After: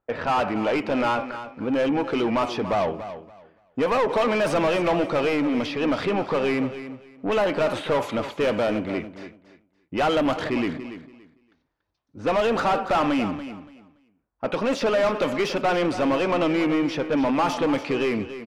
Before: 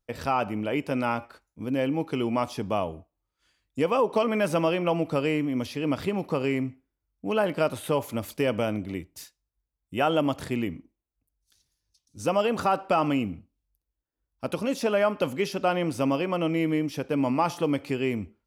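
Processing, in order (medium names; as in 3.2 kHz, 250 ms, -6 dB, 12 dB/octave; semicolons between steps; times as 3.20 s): level-controlled noise filter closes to 1.2 kHz, open at -20 dBFS; vibrato 5.5 Hz 32 cents; overdrive pedal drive 24 dB, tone 2 kHz, clips at -12 dBFS; feedback delay 285 ms, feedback 21%, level -12 dB; trim -2 dB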